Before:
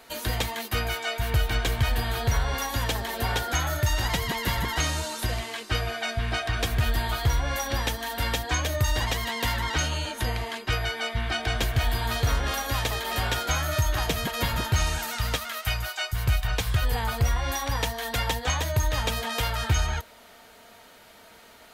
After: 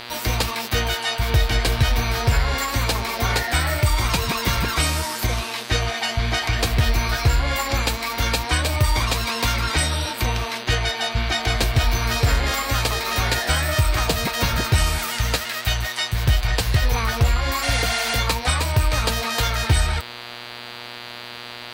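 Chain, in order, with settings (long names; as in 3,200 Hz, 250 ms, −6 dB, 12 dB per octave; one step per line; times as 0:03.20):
formants moved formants +4 semitones
hum with harmonics 120 Hz, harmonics 40, −42 dBFS 0 dB per octave
healed spectral selection 0:17.65–0:18.13, 610–11,000 Hz after
level +5.5 dB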